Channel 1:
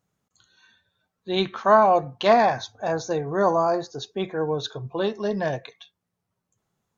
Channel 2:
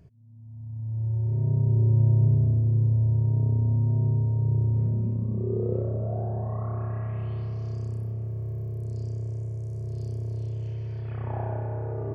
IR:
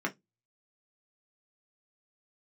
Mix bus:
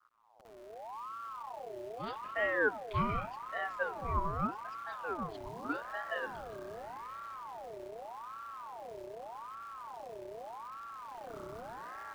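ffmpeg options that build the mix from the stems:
-filter_complex "[0:a]asplit=3[link_01][link_02][link_03];[link_01]bandpass=frequency=530:width_type=q:width=8,volume=0dB[link_04];[link_02]bandpass=frequency=1840:width_type=q:width=8,volume=-6dB[link_05];[link_03]bandpass=frequency=2480:width_type=q:width=8,volume=-9dB[link_06];[link_04][link_05][link_06]amix=inputs=3:normalize=0,adelay=700,volume=-4.5dB[link_07];[1:a]acompressor=threshold=-28dB:ratio=16,acrusher=bits=8:dc=4:mix=0:aa=0.000001,volume=-10.5dB[link_08];[link_07][link_08]amix=inputs=2:normalize=0,adynamicequalizer=threshold=0.00282:dfrequency=900:dqfactor=1.2:tfrequency=900:tqfactor=1.2:attack=5:release=100:ratio=0.375:range=3.5:mode=boostabove:tftype=bell,aeval=exprs='val(0)*sin(2*PI*870*n/s+870*0.45/0.83*sin(2*PI*0.83*n/s))':channel_layout=same"

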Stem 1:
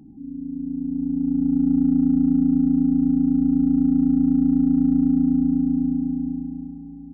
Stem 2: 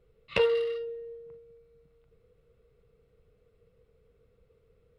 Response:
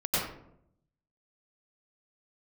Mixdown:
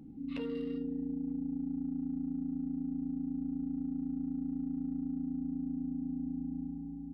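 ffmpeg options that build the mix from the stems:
-filter_complex "[0:a]acompressor=threshold=-26dB:ratio=6,volume=-4.5dB[link_01];[1:a]alimiter=limit=-23dB:level=0:latency=1:release=179,volume=-9dB[link_02];[link_01][link_02]amix=inputs=2:normalize=0,acompressor=threshold=-34dB:ratio=3"

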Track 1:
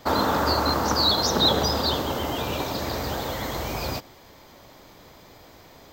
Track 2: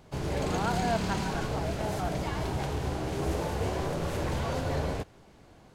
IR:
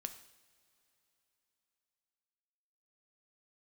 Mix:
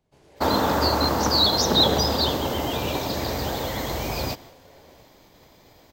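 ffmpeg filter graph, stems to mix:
-filter_complex "[0:a]agate=range=-33dB:threshold=-43dB:ratio=3:detection=peak,adelay=350,volume=2dB[link_01];[1:a]acrossover=split=310[link_02][link_03];[link_02]acompressor=threshold=-42dB:ratio=6[link_04];[link_04][link_03]amix=inputs=2:normalize=0,volume=-18.5dB[link_05];[link_01][link_05]amix=inputs=2:normalize=0,equalizer=frequency=1300:width=2.2:gain=-4.5"

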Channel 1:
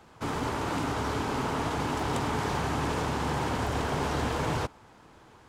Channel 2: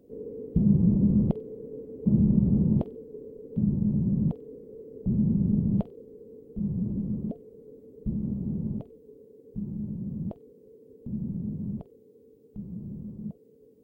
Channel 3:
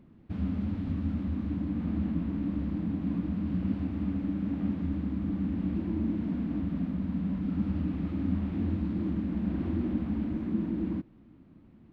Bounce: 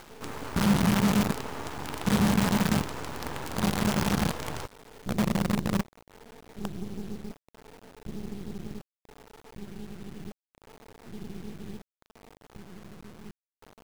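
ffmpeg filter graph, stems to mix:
ffmpeg -i stem1.wav -i stem2.wav -filter_complex "[0:a]volume=-3.5dB[link_01];[1:a]adynamicequalizer=threshold=0.0126:dfrequency=200:dqfactor=4:tfrequency=200:tqfactor=4:attack=5:release=100:ratio=0.375:range=3:mode=boostabove:tftype=bell,adynamicsmooth=sensitivity=5.5:basefreq=940,volume=-7dB[link_02];[link_01][link_02]amix=inputs=2:normalize=0,acompressor=mode=upward:threshold=-39dB:ratio=2.5,acrusher=bits=5:dc=4:mix=0:aa=0.000001" out.wav

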